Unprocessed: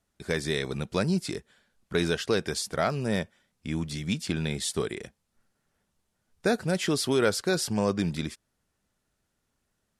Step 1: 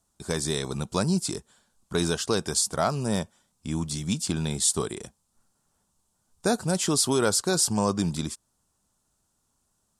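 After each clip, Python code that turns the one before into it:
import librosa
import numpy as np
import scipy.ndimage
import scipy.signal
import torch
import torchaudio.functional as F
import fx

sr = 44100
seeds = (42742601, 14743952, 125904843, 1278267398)

y = fx.graphic_eq(x, sr, hz=(500, 1000, 2000, 8000), db=(-4, 7, -11, 10))
y = y * 10.0 ** (2.0 / 20.0)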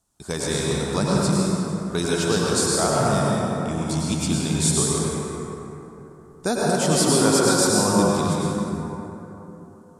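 y = fx.rev_plate(x, sr, seeds[0], rt60_s=3.6, hf_ratio=0.4, predelay_ms=85, drr_db=-5.5)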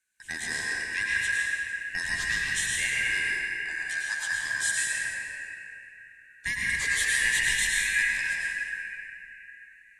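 y = fx.band_shuffle(x, sr, order='2143')
y = y * 10.0 ** (-7.5 / 20.0)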